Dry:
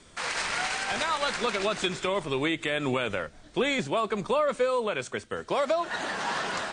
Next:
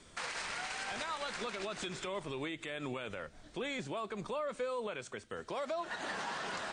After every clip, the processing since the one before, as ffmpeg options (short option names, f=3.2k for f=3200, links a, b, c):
-af "alimiter=level_in=1.5dB:limit=-24dB:level=0:latency=1:release=198,volume=-1.5dB,volume=-4dB"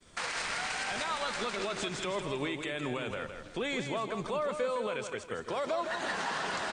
-af "aecho=1:1:162|324|486|648:0.422|0.164|0.0641|0.025,agate=range=-33dB:threshold=-53dB:ratio=3:detection=peak,volume=4.5dB"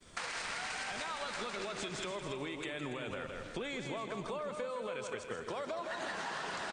-filter_complex "[0:a]acompressor=threshold=-38dB:ratio=6,asplit=2[a][b];[b]aecho=0:1:285:0.299[c];[a][c]amix=inputs=2:normalize=0,volume=1dB"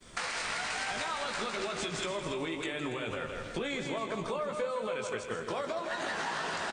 -filter_complex "[0:a]asplit=2[a][b];[b]adelay=18,volume=-6.5dB[c];[a][c]amix=inputs=2:normalize=0,volume=4dB"